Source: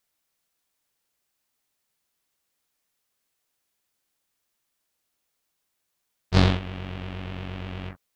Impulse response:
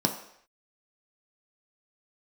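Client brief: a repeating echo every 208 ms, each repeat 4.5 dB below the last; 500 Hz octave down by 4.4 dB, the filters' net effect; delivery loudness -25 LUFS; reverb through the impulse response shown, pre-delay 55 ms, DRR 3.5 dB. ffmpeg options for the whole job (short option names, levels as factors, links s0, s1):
-filter_complex "[0:a]equalizer=f=500:t=o:g=-6,aecho=1:1:208|416|624|832|1040|1248|1456|1664|1872:0.596|0.357|0.214|0.129|0.0772|0.0463|0.0278|0.0167|0.01,asplit=2[s0][s1];[1:a]atrim=start_sample=2205,adelay=55[s2];[s1][s2]afir=irnorm=-1:irlink=0,volume=0.224[s3];[s0][s3]amix=inputs=2:normalize=0,volume=0.841"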